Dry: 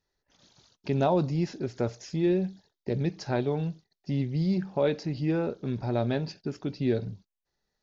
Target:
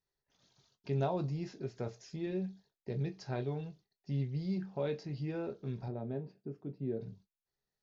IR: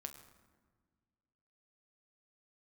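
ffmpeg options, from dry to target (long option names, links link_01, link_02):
-filter_complex "[0:a]asettb=1/sr,asplit=3[link_01][link_02][link_03];[link_01]atrim=end=5.884[link_04];[link_02]atrim=start=5.88:end=7.01,asetpts=PTS-STARTPTS,afade=type=in:duration=0.004:curve=qsin,afade=type=out:start_time=1.126:duration=0.004:curve=qsin,bandpass=frequency=280:width_type=q:width=0.66:csg=0[link_05];[link_03]atrim=start=7.006[link_06];[link_04][link_05]acrossfade=duration=0.004:curve1=hsin:curve2=qsin[link_07];[link_07][link_06]acrossfade=duration=0.004:curve1=qsin:curve2=hsin[link_08];[1:a]atrim=start_sample=2205,atrim=end_sample=3969,asetrate=83790,aresample=44100[link_09];[link_08][link_09]afir=irnorm=-1:irlink=0"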